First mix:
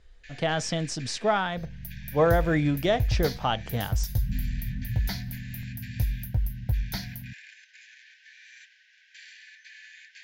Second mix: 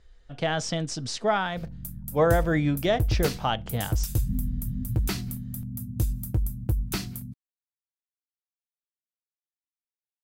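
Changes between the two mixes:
first sound: muted; second sound: remove fixed phaser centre 1800 Hz, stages 8

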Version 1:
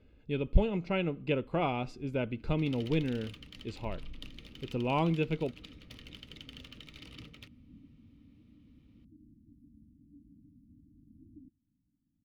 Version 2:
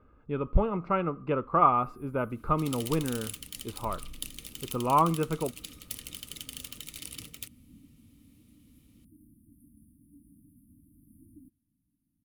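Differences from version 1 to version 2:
speech: add synth low-pass 1200 Hz, resonance Q 11; master: remove air absorption 260 m

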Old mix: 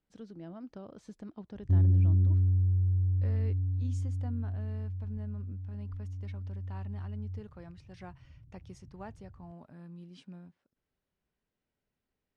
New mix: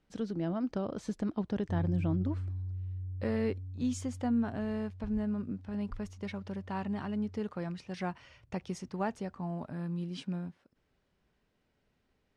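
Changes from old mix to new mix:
speech +11.5 dB; background -11.5 dB

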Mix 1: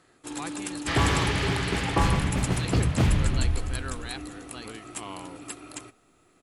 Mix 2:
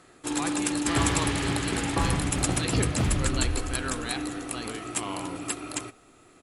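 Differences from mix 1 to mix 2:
first sound +7.0 dB; second sound -5.5 dB; reverb: on, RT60 0.75 s

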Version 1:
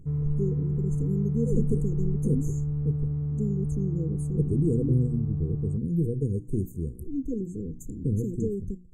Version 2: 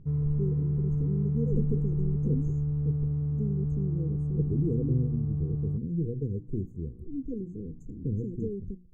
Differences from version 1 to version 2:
speech -4.0 dB; master: add air absorption 200 m

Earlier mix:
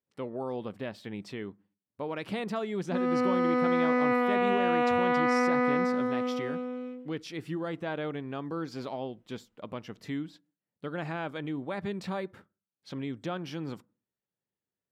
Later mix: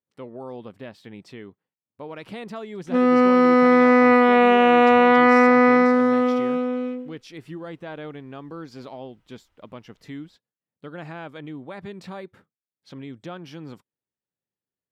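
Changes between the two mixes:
speech: send off; background +11.0 dB

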